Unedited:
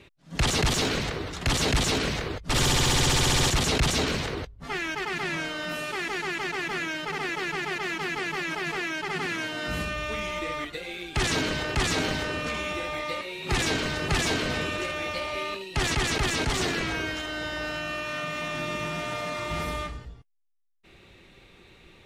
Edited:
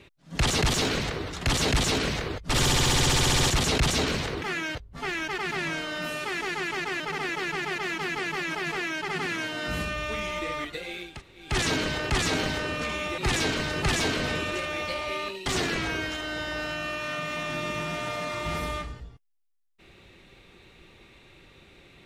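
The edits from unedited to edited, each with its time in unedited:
6.67–7.00 s: move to 4.42 s
11.10 s: insert room tone 0.35 s, crossfade 0.24 s
12.83–13.44 s: delete
15.72–16.51 s: delete

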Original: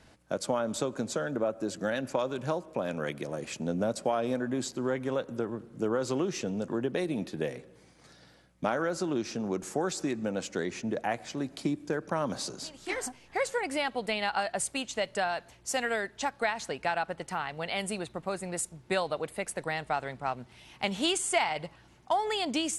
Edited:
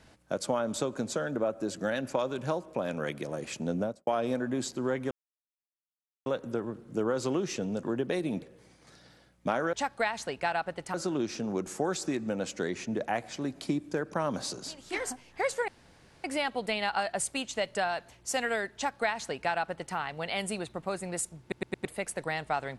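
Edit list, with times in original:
3.75–4.07 s: studio fade out
5.11 s: insert silence 1.15 s
7.27–7.59 s: delete
13.64 s: insert room tone 0.56 s
16.15–17.36 s: copy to 8.90 s
18.81 s: stutter in place 0.11 s, 4 plays

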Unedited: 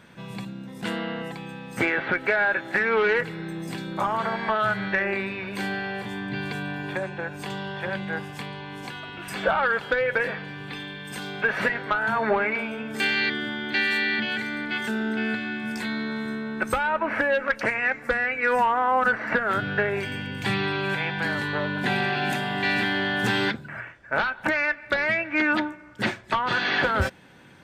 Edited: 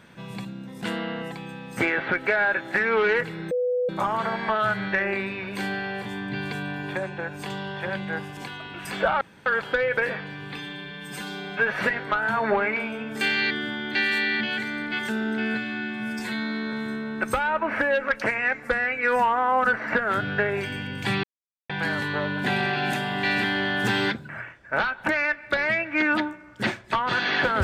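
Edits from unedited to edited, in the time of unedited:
3.51–3.89 s: bleep 496 Hz -21 dBFS
8.37–8.80 s: delete
9.64 s: insert room tone 0.25 s
10.76–11.54 s: stretch 1.5×
15.33–16.12 s: stretch 1.5×
20.63–21.09 s: mute

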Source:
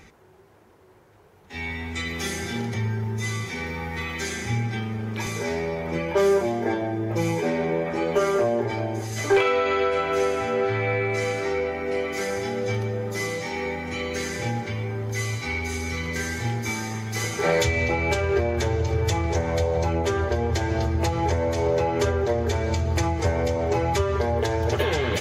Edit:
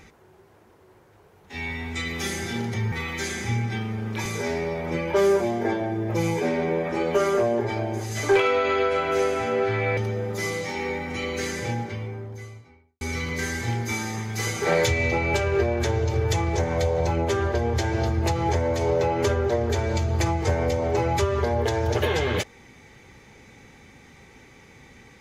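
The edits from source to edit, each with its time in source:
2.92–3.93 s: delete
10.98–12.74 s: delete
14.21–15.78 s: studio fade out

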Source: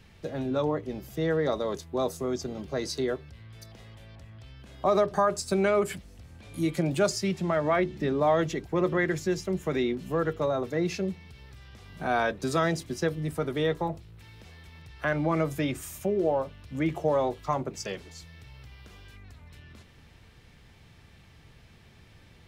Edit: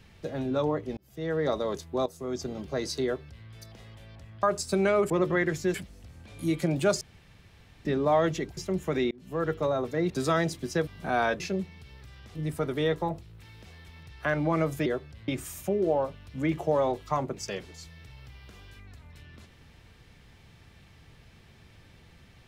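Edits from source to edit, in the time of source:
0.97–1.48 s: fade in
2.06–2.44 s: fade in, from -14.5 dB
3.04–3.46 s: copy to 15.65 s
4.43–5.22 s: delete
7.16–8.00 s: room tone
8.72–9.36 s: move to 5.89 s
9.90–10.28 s: fade in
10.89–11.84 s: swap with 12.37–13.14 s

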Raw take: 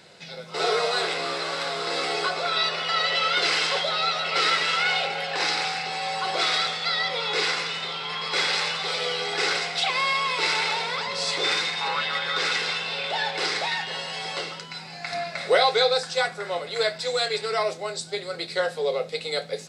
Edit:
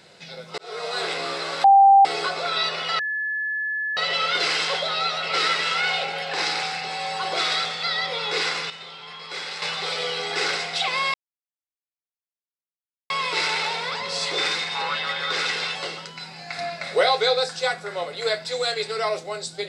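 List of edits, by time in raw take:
0.58–1.10 s: fade in
1.64–2.05 s: bleep 788 Hz -9 dBFS
2.99 s: add tone 1.72 kHz -23.5 dBFS 0.98 s
7.72–8.64 s: gain -8.5 dB
10.16 s: insert silence 1.96 s
12.81–14.29 s: delete

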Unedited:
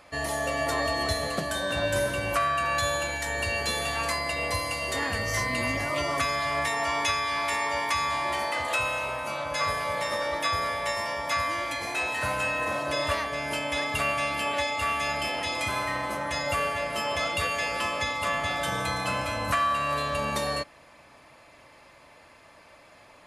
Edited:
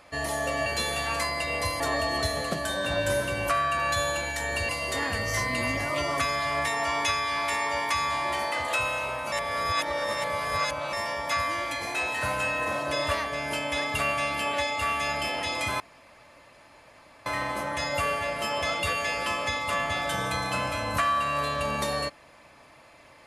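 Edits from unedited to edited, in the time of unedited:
3.55–4.69 s: move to 0.66 s
9.32–10.93 s: reverse
15.80 s: insert room tone 1.46 s

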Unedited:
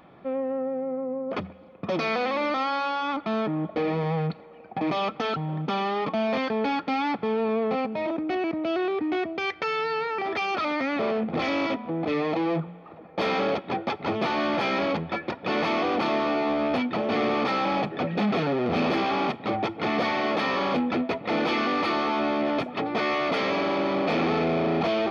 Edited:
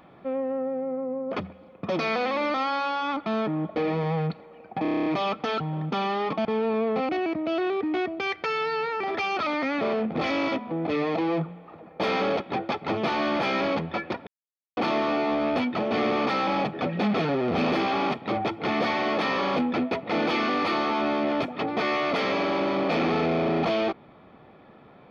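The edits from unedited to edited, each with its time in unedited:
4.82 s: stutter 0.03 s, 9 plays
6.21–7.20 s: delete
7.84–8.27 s: delete
15.45–15.95 s: mute

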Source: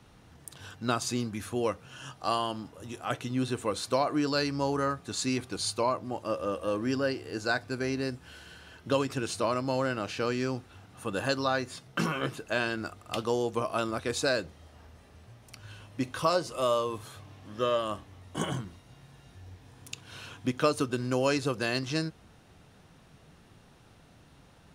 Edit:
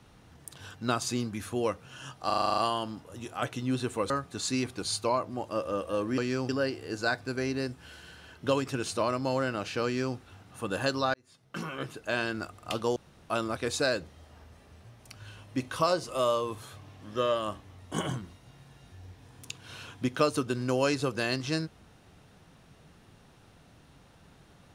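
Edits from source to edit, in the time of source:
2.26 s: stutter 0.04 s, 9 plays
3.78–4.84 s: delete
10.28–10.59 s: copy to 6.92 s
11.57–12.70 s: fade in
13.39–13.73 s: room tone

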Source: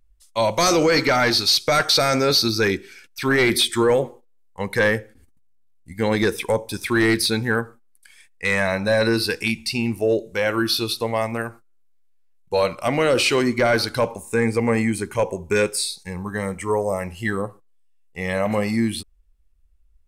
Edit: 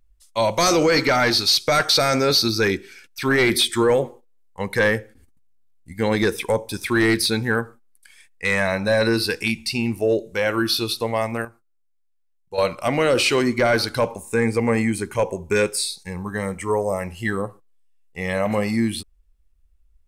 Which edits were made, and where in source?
11.45–12.58 s: gain -9.5 dB

